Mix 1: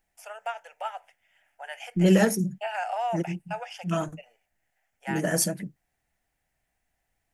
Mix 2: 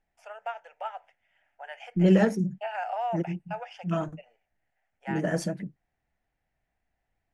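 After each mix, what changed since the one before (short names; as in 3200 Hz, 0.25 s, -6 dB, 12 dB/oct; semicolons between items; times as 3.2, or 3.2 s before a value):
master: add tape spacing loss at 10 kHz 20 dB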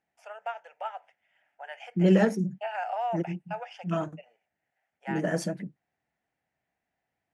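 second voice: add HPF 140 Hz 12 dB/oct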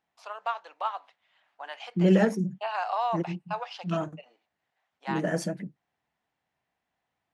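first voice: remove fixed phaser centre 1100 Hz, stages 6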